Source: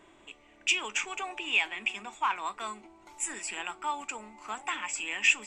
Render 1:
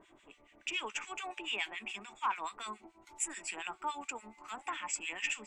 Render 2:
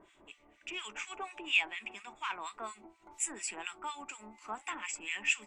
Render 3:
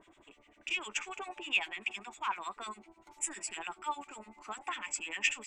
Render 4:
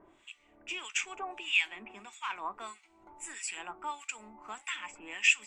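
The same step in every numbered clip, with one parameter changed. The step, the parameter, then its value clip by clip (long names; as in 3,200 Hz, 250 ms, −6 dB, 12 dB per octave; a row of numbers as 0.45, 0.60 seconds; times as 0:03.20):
two-band tremolo in antiphase, speed: 7, 4.2, 10, 1.6 Hertz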